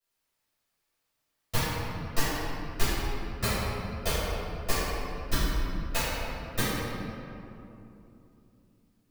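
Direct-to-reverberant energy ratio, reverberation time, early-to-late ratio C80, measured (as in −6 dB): −15.5 dB, 3.0 s, −2.0 dB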